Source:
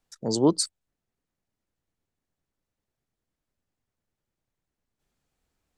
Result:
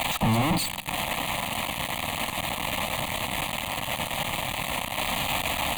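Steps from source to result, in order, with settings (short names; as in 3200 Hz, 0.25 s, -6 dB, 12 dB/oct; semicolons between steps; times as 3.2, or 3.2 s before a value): switching spikes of -17 dBFS; LPF 3700 Hz 12 dB/oct; tilt shelf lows +9 dB, about 1100 Hz; fuzz box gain 49 dB, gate -45 dBFS; fixed phaser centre 1500 Hz, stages 6; reverb RT60 0.95 s, pre-delay 41 ms, DRR 19 dB; gain -4 dB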